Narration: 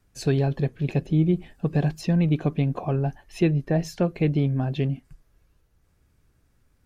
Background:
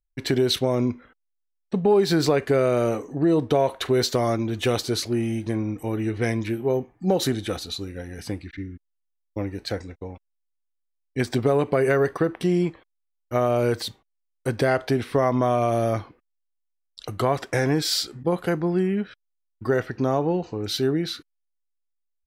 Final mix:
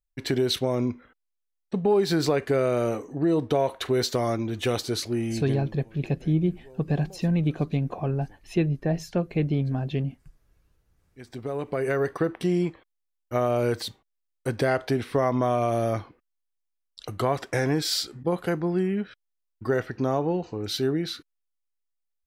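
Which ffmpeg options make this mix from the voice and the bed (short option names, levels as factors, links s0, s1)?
-filter_complex "[0:a]adelay=5150,volume=0.75[s0];[1:a]volume=11.9,afade=t=out:st=5.39:d=0.36:silence=0.0630957,afade=t=in:st=11.13:d=1.12:silence=0.0595662[s1];[s0][s1]amix=inputs=2:normalize=0"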